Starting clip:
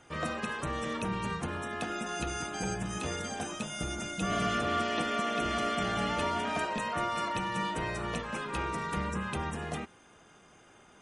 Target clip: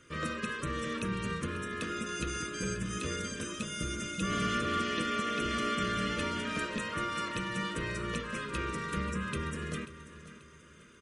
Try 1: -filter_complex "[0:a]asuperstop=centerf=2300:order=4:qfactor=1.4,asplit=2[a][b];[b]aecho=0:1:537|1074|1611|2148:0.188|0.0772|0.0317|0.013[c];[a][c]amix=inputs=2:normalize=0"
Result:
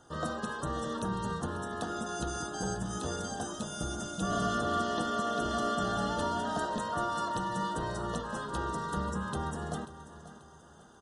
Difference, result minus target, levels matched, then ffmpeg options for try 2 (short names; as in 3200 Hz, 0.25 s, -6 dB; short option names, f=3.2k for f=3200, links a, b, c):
2000 Hz band -5.0 dB
-filter_complex "[0:a]asuperstop=centerf=780:order=4:qfactor=1.4,asplit=2[a][b];[b]aecho=0:1:537|1074|1611|2148:0.188|0.0772|0.0317|0.013[c];[a][c]amix=inputs=2:normalize=0"